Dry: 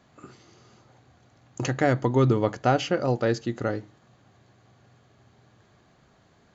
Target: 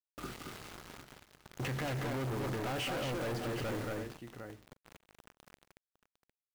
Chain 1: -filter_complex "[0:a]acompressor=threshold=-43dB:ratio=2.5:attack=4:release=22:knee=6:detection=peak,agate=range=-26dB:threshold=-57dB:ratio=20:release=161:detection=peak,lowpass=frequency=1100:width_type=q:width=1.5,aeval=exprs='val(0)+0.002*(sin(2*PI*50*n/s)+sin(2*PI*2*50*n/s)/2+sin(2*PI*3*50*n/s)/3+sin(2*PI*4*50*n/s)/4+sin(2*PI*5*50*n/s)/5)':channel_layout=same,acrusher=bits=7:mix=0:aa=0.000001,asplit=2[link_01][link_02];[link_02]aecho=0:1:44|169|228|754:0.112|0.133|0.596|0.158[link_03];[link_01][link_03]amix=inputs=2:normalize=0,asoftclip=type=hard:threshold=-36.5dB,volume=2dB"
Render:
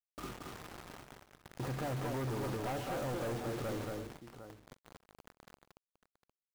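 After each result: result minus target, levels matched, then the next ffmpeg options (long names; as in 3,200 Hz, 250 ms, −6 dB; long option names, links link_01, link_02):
downward compressor: peak gain reduction +5.5 dB; 2,000 Hz band −3.5 dB
-filter_complex "[0:a]acompressor=threshold=-34dB:ratio=2.5:attack=4:release=22:knee=6:detection=peak,agate=range=-26dB:threshold=-57dB:ratio=20:release=161:detection=peak,lowpass=frequency=1100:width_type=q:width=1.5,aeval=exprs='val(0)+0.002*(sin(2*PI*50*n/s)+sin(2*PI*2*50*n/s)/2+sin(2*PI*3*50*n/s)/3+sin(2*PI*4*50*n/s)/4+sin(2*PI*5*50*n/s)/5)':channel_layout=same,acrusher=bits=7:mix=0:aa=0.000001,asplit=2[link_01][link_02];[link_02]aecho=0:1:44|169|228|754:0.112|0.133|0.596|0.158[link_03];[link_01][link_03]amix=inputs=2:normalize=0,asoftclip=type=hard:threshold=-36.5dB,volume=2dB"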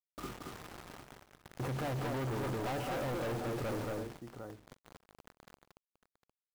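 2,000 Hz band −2.5 dB
-filter_complex "[0:a]acompressor=threshold=-34dB:ratio=2.5:attack=4:release=22:knee=6:detection=peak,agate=range=-26dB:threshold=-57dB:ratio=20:release=161:detection=peak,lowpass=frequency=2600:width_type=q:width=1.5,aeval=exprs='val(0)+0.002*(sin(2*PI*50*n/s)+sin(2*PI*2*50*n/s)/2+sin(2*PI*3*50*n/s)/3+sin(2*PI*4*50*n/s)/4+sin(2*PI*5*50*n/s)/5)':channel_layout=same,acrusher=bits=7:mix=0:aa=0.000001,asplit=2[link_01][link_02];[link_02]aecho=0:1:44|169|228|754:0.112|0.133|0.596|0.158[link_03];[link_01][link_03]amix=inputs=2:normalize=0,asoftclip=type=hard:threshold=-36.5dB,volume=2dB"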